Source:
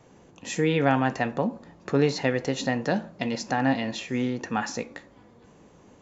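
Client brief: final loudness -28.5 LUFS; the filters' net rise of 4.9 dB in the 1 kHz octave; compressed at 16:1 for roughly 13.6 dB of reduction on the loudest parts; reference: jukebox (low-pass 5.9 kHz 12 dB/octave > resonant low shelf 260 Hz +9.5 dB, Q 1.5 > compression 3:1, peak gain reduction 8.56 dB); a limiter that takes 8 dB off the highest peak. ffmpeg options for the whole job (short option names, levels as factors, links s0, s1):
-af "equalizer=f=1000:t=o:g=8,acompressor=threshold=0.0398:ratio=16,alimiter=limit=0.075:level=0:latency=1,lowpass=5900,lowshelf=f=260:t=q:w=1.5:g=9.5,acompressor=threshold=0.0224:ratio=3,volume=2.82"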